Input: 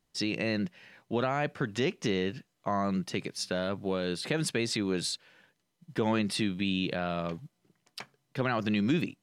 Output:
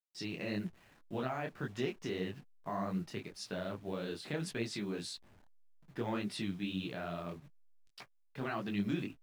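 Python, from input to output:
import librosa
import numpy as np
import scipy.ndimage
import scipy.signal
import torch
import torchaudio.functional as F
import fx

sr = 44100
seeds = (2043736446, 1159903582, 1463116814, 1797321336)

y = fx.delta_hold(x, sr, step_db=-48.0)
y = fx.high_shelf(y, sr, hz=4000.0, db=-5.0)
y = fx.notch(y, sr, hz=520.0, q=12.0)
y = fx.detune_double(y, sr, cents=60)
y = y * librosa.db_to_amplitude(-4.0)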